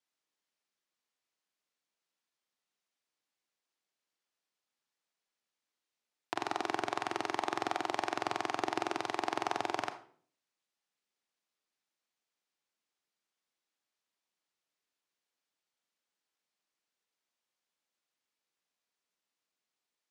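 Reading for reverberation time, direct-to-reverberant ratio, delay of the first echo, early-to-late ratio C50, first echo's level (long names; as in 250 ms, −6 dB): 0.50 s, 9.0 dB, no echo audible, 11.5 dB, no echo audible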